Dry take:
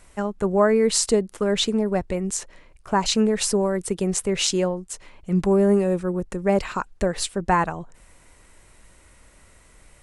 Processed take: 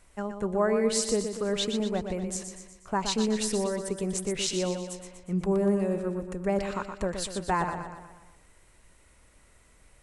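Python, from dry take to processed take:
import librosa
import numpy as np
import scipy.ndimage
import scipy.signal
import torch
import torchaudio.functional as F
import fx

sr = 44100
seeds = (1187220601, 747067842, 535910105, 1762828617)

y = fx.echo_feedback(x, sr, ms=121, feedback_pct=52, wet_db=-7.5)
y = y * librosa.db_to_amplitude(-7.5)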